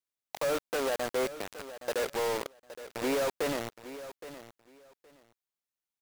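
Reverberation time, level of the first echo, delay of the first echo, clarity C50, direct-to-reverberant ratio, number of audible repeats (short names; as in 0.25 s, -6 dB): none, -14.0 dB, 0.818 s, none, none, 2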